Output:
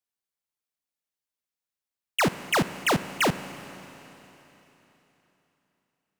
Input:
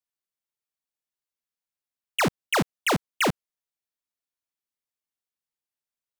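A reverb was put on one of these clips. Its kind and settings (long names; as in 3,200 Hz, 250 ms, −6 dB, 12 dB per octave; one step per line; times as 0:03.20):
four-comb reverb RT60 3.6 s, combs from 32 ms, DRR 12.5 dB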